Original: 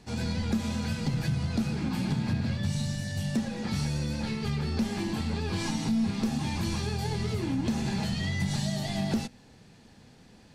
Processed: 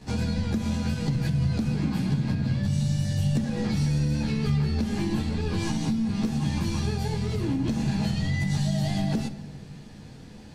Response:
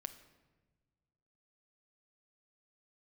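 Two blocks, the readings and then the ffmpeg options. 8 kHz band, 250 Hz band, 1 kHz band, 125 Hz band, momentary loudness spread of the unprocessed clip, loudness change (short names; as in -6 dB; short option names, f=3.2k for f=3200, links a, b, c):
0.0 dB, +3.0 dB, 0.0 dB, +5.5 dB, 2 LU, +3.5 dB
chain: -filter_complex "[0:a]acompressor=threshold=-33dB:ratio=6,asplit=2[a][b];[1:a]atrim=start_sample=2205,lowshelf=f=370:g=6.5,adelay=14[c];[b][c]afir=irnorm=-1:irlink=0,volume=7.5dB[d];[a][d]amix=inputs=2:normalize=0"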